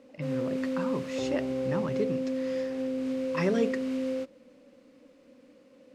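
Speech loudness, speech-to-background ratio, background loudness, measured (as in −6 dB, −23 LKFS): −34.0 LKFS, −2.0 dB, −32.0 LKFS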